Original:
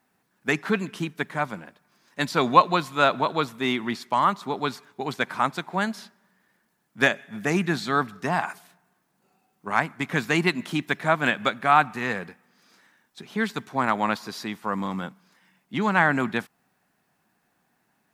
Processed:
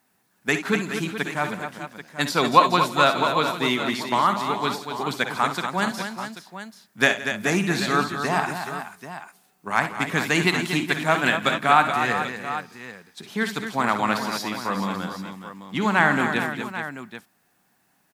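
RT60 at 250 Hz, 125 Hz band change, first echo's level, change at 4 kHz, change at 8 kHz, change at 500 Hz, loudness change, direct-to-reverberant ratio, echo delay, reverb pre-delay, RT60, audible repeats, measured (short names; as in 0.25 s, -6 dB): none, +1.5 dB, -11.5 dB, +5.0 dB, +7.5 dB, +2.0 dB, +2.0 dB, none, 56 ms, none, none, 5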